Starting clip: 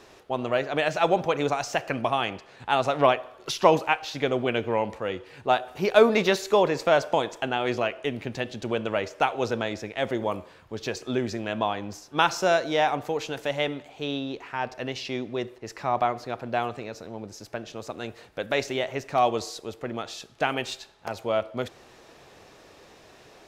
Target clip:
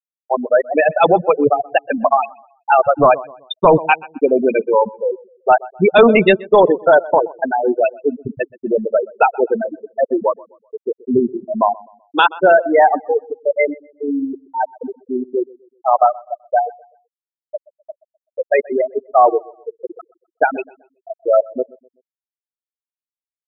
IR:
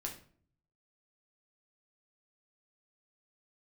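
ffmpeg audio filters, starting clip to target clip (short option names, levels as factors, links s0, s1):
-filter_complex "[0:a]highshelf=f=2300:g=4,asplit=2[s0][s1];[s1]adelay=170,highpass=300,lowpass=3400,asoftclip=type=hard:threshold=0.224,volume=0.1[s2];[s0][s2]amix=inputs=2:normalize=0,afftfilt=real='re*gte(hypot(re,im),0.224)':imag='im*gte(hypot(re,im),0.224)':win_size=1024:overlap=0.75,asplit=2[s3][s4];[s4]adelay=127,lowpass=f=1800:p=1,volume=0.075,asplit=2[s5][s6];[s6]adelay=127,lowpass=f=1800:p=1,volume=0.37,asplit=2[s7][s8];[s8]adelay=127,lowpass=f=1800:p=1,volume=0.37[s9];[s5][s7][s9]amix=inputs=3:normalize=0[s10];[s3][s10]amix=inputs=2:normalize=0,apsyclip=6.31,volume=0.708"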